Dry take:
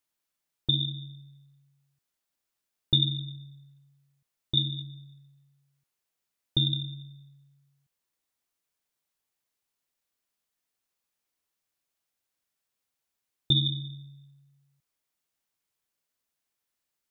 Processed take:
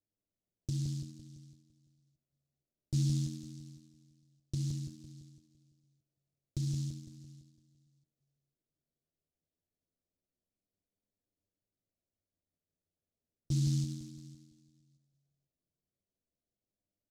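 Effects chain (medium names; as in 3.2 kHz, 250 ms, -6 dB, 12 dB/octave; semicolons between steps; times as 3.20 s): Chebyshev low-pass 670 Hz, order 4; bass shelf 370 Hz +10.5 dB; peak limiter -21.5 dBFS, peak gain reduction 11 dB; flange 0.18 Hz, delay 9.8 ms, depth 3.6 ms, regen +41%; on a send: feedback delay 169 ms, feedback 52%, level -4 dB; on the sum: delay time shaken by noise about 5.3 kHz, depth 0.14 ms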